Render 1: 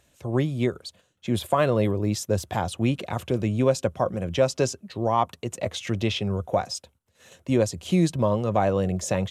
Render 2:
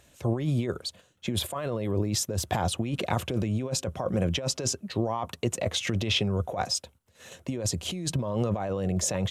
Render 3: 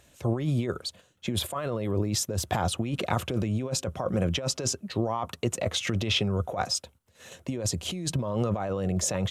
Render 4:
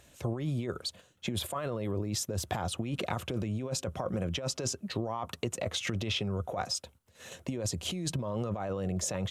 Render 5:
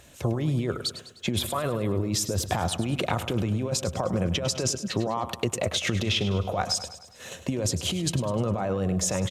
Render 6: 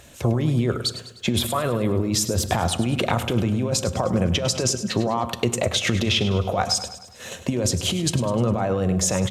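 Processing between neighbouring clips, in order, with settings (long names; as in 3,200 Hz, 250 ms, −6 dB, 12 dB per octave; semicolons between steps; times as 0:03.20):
compressor whose output falls as the input rises −28 dBFS, ratio −1
dynamic equaliser 1,300 Hz, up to +5 dB, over −53 dBFS, Q 5.1
downward compressor 3 to 1, threshold −31 dBFS, peak gain reduction 8.5 dB
repeating echo 102 ms, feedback 52%, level −12.5 dB; level +6.5 dB
convolution reverb RT60 0.75 s, pre-delay 4 ms, DRR 15 dB; level +4.5 dB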